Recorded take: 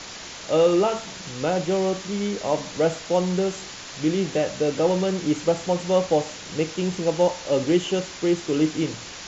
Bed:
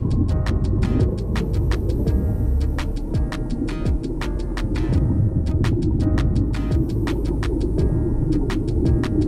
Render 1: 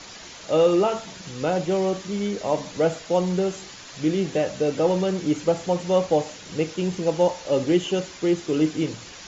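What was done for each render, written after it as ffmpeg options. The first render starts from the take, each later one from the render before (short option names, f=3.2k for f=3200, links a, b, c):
-af "afftdn=nr=6:nf=-38"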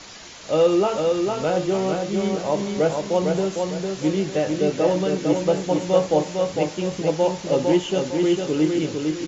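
-filter_complex "[0:a]asplit=2[a][b];[b]adelay=20,volume=-13dB[c];[a][c]amix=inputs=2:normalize=0,aecho=1:1:454|908|1362|1816|2270:0.631|0.233|0.0864|0.032|0.0118"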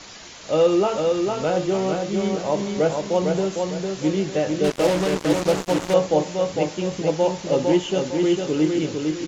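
-filter_complex "[0:a]asettb=1/sr,asplit=3[a][b][c];[a]atrim=end=4.644[d];[b]atrim=start=4.64:end=5.94,asetpts=PTS-STARTPTS,afade=t=in:d=0.004:c=qsin,afade=t=out:st=1.296:d=0.004:c=qsin,acrusher=bits=3:mix=0:aa=0.5[e];[c]atrim=start=5.936[f];[d][e]acrossfade=d=0.004:c1=hsin:c2=qsin[g];[g][f]acrossfade=d=0.004:c1=qsin:c2=hsin"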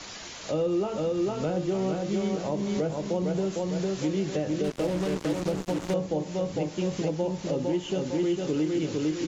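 -filter_complex "[0:a]acrossover=split=350[a][b];[a]alimiter=limit=-23dB:level=0:latency=1:release=142[c];[b]acompressor=threshold=-32dB:ratio=6[d];[c][d]amix=inputs=2:normalize=0"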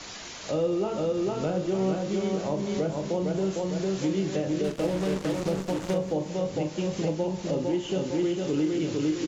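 -filter_complex "[0:a]asplit=2[a][b];[b]adelay=42,volume=-9.5dB[c];[a][c]amix=inputs=2:normalize=0,aecho=1:1:183|366|549|732:0.141|0.0593|0.0249|0.0105"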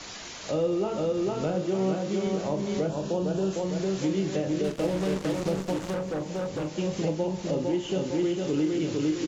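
-filter_complex "[0:a]asettb=1/sr,asplit=3[a][b][c];[a]atrim=end=1.554[d];[b]atrim=start=1.55:end=2.27,asetpts=PTS-STARTPTS,afade=t=in:d=0.004:c=qsin,afade=t=out:st=0.716:d=0.004:c=qsin,highpass=100[e];[c]atrim=start=2.266[f];[d][e]acrossfade=d=0.004:c1=hsin:c2=qsin[g];[g][f]acrossfade=d=0.004:c1=qsin:c2=hsin,asettb=1/sr,asplit=3[h][i][j];[h]atrim=end=2.894[k];[i]atrim=start=2.89:end=3.53,asetpts=PTS-STARTPTS,afade=t=in:d=0.004:c=qsin,afade=t=out:st=0.636:d=0.004:c=qsin,asuperstop=centerf=2100:order=4:qfactor=4.2[l];[j]atrim=start=3.526[m];[k][l]acrossfade=d=0.004:c1=hsin:c2=qsin[n];[n][m]acrossfade=d=0.004:c1=qsin:c2=hsin,asettb=1/sr,asplit=3[o][p][q];[o]atrim=end=5.794[r];[p]atrim=start=5.79:end=6.69,asetpts=PTS-STARTPTS,afade=t=in:d=0.004:c=qsin,afade=t=out:st=0.896:d=0.004:c=qsin,volume=27dB,asoftclip=hard,volume=-27dB[s];[q]atrim=start=6.686[t];[r][s]acrossfade=d=0.004:c1=hsin:c2=qsin[u];[u][t]acrossfade=d=0.004:c1=qsin:c2=hsin"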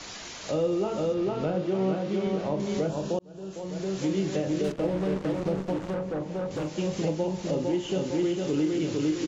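-filter_complex "[0:a]asettb=1/sr,asplit=3[a][b][c];[a]atrim=end=1.144[d];[b]atrim=start=1.14:end=2.6,asetpts=PTS-STARTPTS,afade=t=in:d=0.004:c=qsin,afade=t=out:st=1.456:d=0.004:c=qsin,lowpass=3.9k[e];[c]atrim=start=2.596[f];[d][e]acrossfade=d=0.004:c1=hsin:c2=qsin[g];[g][f]acrossfade=d=0.004:c1=qsin:c2=hsin,asettb=1/sr,asplit=3[h][i][j];[h]atrim=end=4.724[k];[i]atrim=start=4.72:end=6.51,asetpts=PTS-STARTPTS,afade=t=in:d=0.004:c=qsin,afade=t=out:st=1.786:d=0.004:c=qsin,lowpass=f=1.8k:p=1[l];[j]atrim=start=6.506[m];[k][l]acrossfade=d=0.004:c1=hsin:c2=qsin[n];[n][m]acrossfade=d=0.004:c1=qsin:c2=hsin,asplit=2[o][p];[o]atrim=end=3.19,asetpts=PTS-STARTPTS,afade=t=out:st=3.186:d=0.004:c=hsin[q];[p]atrim=start=3.19,asetpts=PTS-STARTPTS,afade=t=in:d=0.95[r];[q][r]concat=n=2:v=0:a=1"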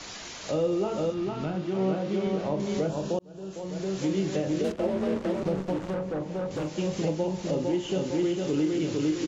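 -filter_complex "[0:a]asettb=1/sr,asplit=3[a][b][c];[a]atrim=end=1.104[d];[b]atrim=start=1.1:end=1.77,asetpts=PTS-STARTPTS,afade=t=in:d=0.004:c=qsin,afade=t=out:st=0.666:d=0.004:c=qsin,equalizer=f=510:w=3.2:g=-13.5[e];[c]atrim=start=1.766[f];[d][e]acrossfade=d=0.004:c1=hsin:c2=qsin[g];[g][f]acrossfade=d=0.004:c1=qsin:c2=hsin,asettb=1/sr,asplit=3[h][i][j];[h]atrim=end=4.644[k];[i]atrim=start=4.64:end=5.43,asetpts=PTS-STARTPTS,afade=t=in:d=0.004:c=qsin,afade=t=out:st=0.786:d=0.004:c=qsin,afreqshift=37[l];[j]atrim=start=5.426[m];[k][l]acrossfade=d=0.004:c1=hsin:c2=qsin[n];[n][m]acrossfade=d=0.004:c1=qsin:c2=hsin"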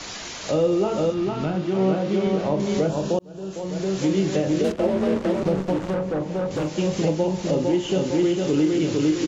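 -af "volume=6dB"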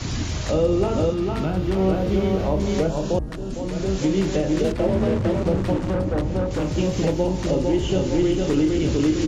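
-filter_complex "[1:a]volume=-7.5dB[a];[0:a][a]amix=inputs=2:normalize=0"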